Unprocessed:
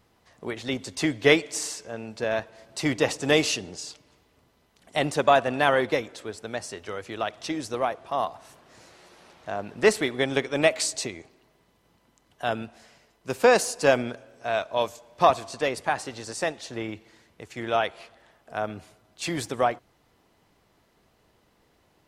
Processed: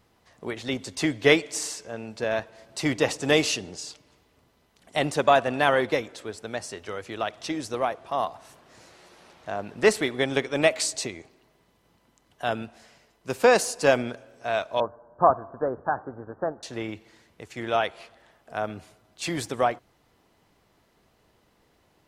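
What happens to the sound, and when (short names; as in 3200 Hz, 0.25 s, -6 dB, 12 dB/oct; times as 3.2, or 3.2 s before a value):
14.8–16.63 steep low-pass 1600 Hz 96 dB/oct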